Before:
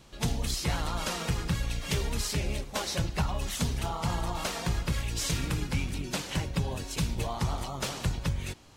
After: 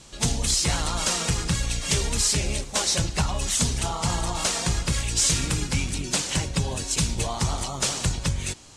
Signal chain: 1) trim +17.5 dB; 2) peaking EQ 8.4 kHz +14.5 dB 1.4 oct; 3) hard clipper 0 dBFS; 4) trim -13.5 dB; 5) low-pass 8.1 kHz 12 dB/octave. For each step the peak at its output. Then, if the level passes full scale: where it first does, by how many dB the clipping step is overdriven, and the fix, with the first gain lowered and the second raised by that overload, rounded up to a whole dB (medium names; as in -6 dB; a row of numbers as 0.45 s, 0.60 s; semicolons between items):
-1.5 dBFS, +8.0 dBFS, 0.0 dBFS, -13.5 dBFS, -12.5 dBFS; step 2, 8.0 dB; step 1 +9.5 dB, step 4 -5.5 dB